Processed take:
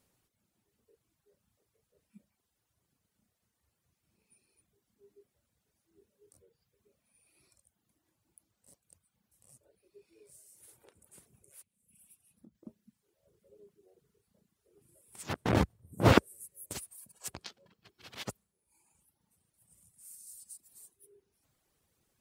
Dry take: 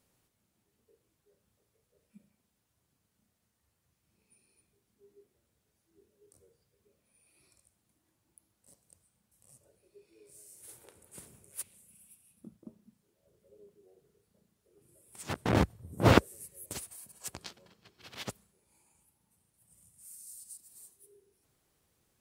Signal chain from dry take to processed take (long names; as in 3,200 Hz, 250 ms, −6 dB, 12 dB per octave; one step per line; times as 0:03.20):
reverb reduction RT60 0.79 s
0:10.35–0:12.55: downward compressor 4 to 1, threshold −56 dBFS, peak gain reduction 18 dB